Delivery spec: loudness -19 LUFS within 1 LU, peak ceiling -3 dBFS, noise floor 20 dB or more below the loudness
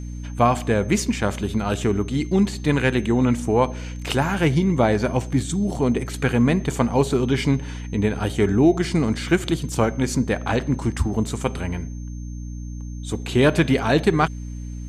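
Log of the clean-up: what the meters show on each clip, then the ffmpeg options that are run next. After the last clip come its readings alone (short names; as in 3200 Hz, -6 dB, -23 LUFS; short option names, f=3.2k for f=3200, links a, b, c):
hum 60 Hz; harmonics up to 300 Hz; hum level -29 dBFS; steady tone 6300 Hz; tone level -50 dBFS; loudness -21.5 LUFS; peak -4.0 dBFS; loudness target -19.0 LUFS
-> -af "bandreject=f=60:t=h:w=6,bandreject=f=120:t=h:w=6,bandreject=f=180:t=h:w=6,bandreject=f=240:t=h:w=6,bandreject=f=300:t=h:w=6"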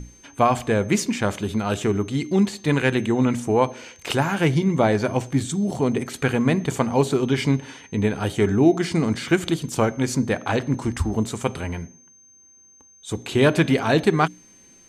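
hum none; steady tone 6300 Hz; tone level -50 dBFS
-> -af "bandreject=f=6.3k:w=30"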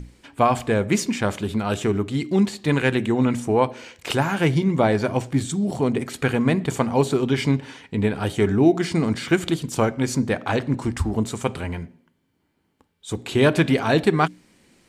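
steady tone none; loudness -22.0 LUFS; peak -4.5 dBFS; loudness target -19.0 LUFS
-> -af "volume=3dB,alimiter=limit=-3dB:level=0:latency=1"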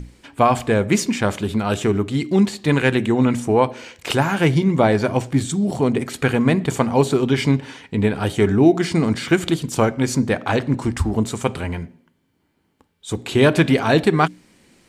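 loudness -19.0 LUFS; peak -3.0 dBFS; noise floor -66 dBFS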